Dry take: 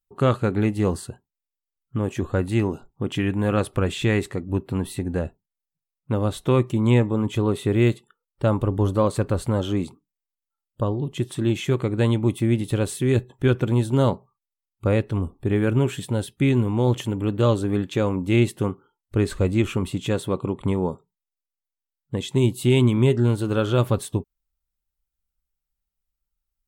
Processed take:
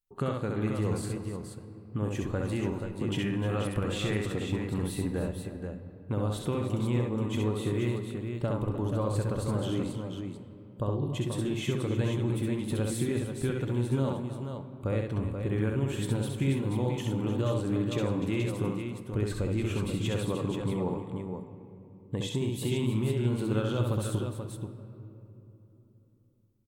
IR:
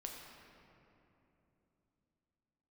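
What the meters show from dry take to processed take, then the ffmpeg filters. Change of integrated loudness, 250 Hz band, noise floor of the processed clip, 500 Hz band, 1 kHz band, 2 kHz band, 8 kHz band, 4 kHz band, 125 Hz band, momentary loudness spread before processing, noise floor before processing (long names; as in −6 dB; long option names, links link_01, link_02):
−8.0 dB, −7.5 dB, −54 dBFS, −8.5 dB, −8.5 dB, −8.0 dB, −4.5 dB, −6.0 dB, −7.5 dB, 9 LU, below −85 dBFS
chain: -filter_complex "[0:a]acompressor=threshold=-23dB:ratio=6,aecho=1:1:66|304|482:0.668|0.237|0.473,asplit=2[link_01][link_02];[1:a]atrim=start_sample=2205[link_03];[link_02][link_03]afir=irnorm=-1:irlink=0,volume=-1dB[link_04];[link_01][link_04]amix=inputs=2:normalize=0,volume=-8dB"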